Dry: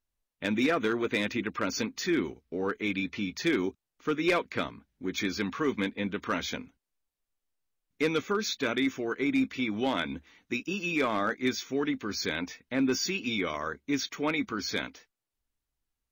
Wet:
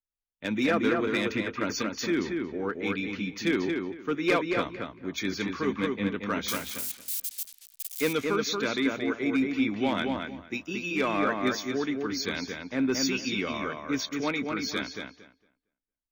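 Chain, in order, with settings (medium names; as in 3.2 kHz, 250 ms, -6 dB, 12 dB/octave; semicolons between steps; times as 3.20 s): 6.48–8.13 s: zero-crossing glitches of -25 dBFS; filtered feedback delay 229 ms, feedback 27%, low-pass 3.5 kHz, level -3 dB; three bands expanded up and down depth 40%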